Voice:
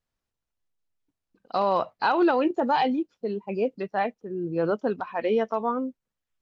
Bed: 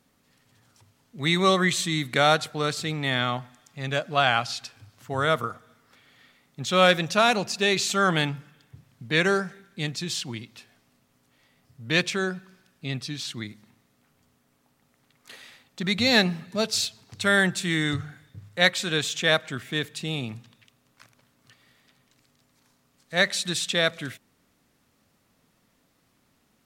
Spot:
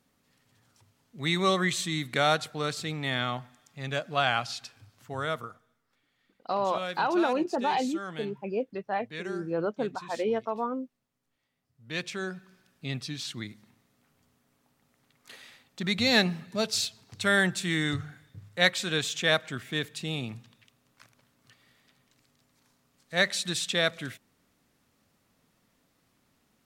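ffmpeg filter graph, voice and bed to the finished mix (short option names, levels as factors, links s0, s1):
-filter_complex "[0:a]adelay=4950,volume=0.596[s0];[1:a]volume=2.99,afade=t=out:st=4.85:d=0.93:silence=0.237137,afade=t=in:st=11.73:d=0.98:silence=0.199526[s1];[s0][s1]amix=inputs=2:normalize=0"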